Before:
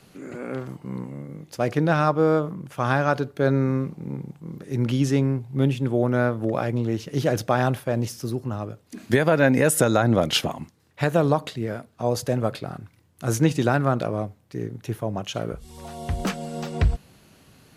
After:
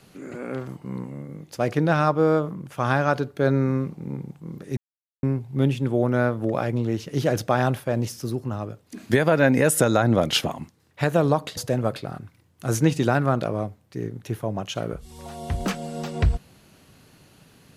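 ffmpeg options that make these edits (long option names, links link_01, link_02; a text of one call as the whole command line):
ffmpeg -i in.wav -filter_complex "[0:a]asplit=4[link_01][link_02][link_03][link_04];[link_01]atrim=end=4.77,asetpts=PTS-STARTPTS,afade=type=out:start_time=4.766:duration=0.004:curve=hsin[link_05];[link_02]atrim=start=4.77:end=5.23,asetpts=PTS-STARTPTS,volume=0[link_06];[link_03]atrim=start=5.23:end=11.572,asetpts=PTS-STARTPTS,afade=type=in:duration=0.004:curve=hsin[link_07];[link_04]atrim=start=12.158[link_08];[link_05][link_06][link_07]concat=n=3:v=0:a=1[link_09];[link_09][link_08]acrossfade=duration=0.004:curve1=hsin:curve2=hsin" out.wav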